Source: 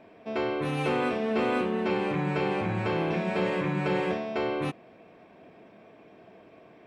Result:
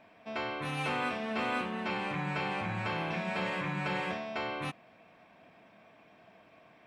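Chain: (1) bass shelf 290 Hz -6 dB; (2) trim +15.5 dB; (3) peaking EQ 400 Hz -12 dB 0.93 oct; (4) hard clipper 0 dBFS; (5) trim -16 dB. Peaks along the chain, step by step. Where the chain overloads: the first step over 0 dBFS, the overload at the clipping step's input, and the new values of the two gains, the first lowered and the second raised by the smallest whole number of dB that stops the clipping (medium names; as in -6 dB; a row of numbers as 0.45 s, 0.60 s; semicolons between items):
-17.0 dBFS, -1.5 dBFS, -3.5 dBFS, -3.5 dBFS, -19.5 dBFS; nothing clips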